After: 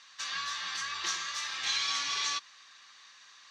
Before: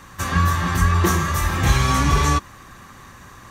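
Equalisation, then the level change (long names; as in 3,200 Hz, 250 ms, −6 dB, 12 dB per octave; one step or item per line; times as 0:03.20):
resonant band-pass 4,500 Hz, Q 1.8
high-frequency loss of the air 150 metres
spectral tilt +3 dB per octave
0.0 dB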